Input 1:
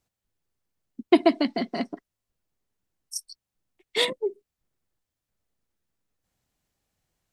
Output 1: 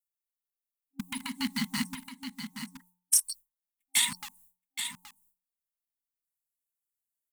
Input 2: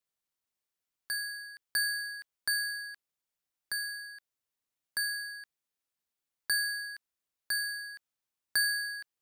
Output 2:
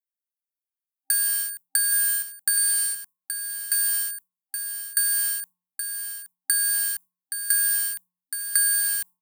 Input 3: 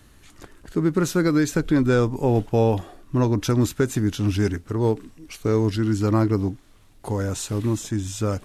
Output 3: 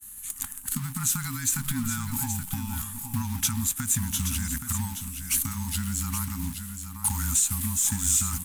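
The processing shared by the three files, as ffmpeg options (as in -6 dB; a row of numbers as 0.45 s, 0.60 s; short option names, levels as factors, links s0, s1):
-filter_complex "[0:a]acrossover=split=7100[s0][s1];[s1]acompressor=threshold=0.00251:ratio=4:attack=1:release=60[s2];[s0][s2]amix=inputs=2:normalize=0,agate=range=0.0224:threshold=0.00501:ratio=3:detection=peak,aexciter=amount=10.3:drive=6.8:freq=7400,afreqshift=-21,asplit=2[s3][s4];[s4]acrusher=bits=4:mix=0:aa=0.000001,volume=0.473[s5];[s3][s5]amix=inputs=2:normalize=0,alimiter=limit=0.251:level=0:latency=1:release=164,acompressor=threshold=0.0631:ratio=6,afftfilt=real='re*(1-between(b*sr/4096,270,790))':imag='im*(1-between(b*sr/4096,270,790))':win_size=4096:overlap=0.75,highshelf=f=2200:g=7.5,bandreject=f=179.5:t=h:w=4,bandreject=f=359:t=h:w=4,bandreject=f=538.5:t=h:w=4,bandreject=f=718:t=h:w=4,bandreject=f=897.5:t=h:w=4,bandreject=f=1077:t=h:w=4,asplit=2[s6][s7];[s7]aecho=0:1:823:0.376[s8];[s6][s8]amix=inputs=2:normalize=0,volume=0.841"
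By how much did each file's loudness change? -4.5 LU, +10.5 LU, -4.5 LU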